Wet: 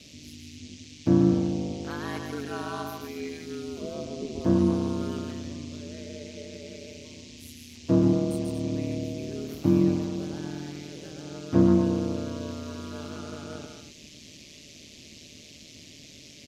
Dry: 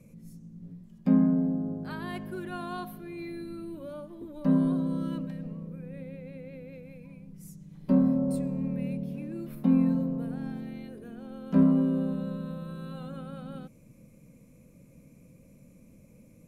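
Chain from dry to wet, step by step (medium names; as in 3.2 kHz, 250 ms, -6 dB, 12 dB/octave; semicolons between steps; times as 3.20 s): 3.81–4.41 s: tilt shelf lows +8.5 dB, about 660 Hz; band noise 2.2–6.7 kHz -54 dBFS; loudspeakers at several distances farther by 48 m -5 dB, 80 m -10 dB; ring modulator 77 Hz; bass shelf 61 Hz -12 dB; trim +5 dB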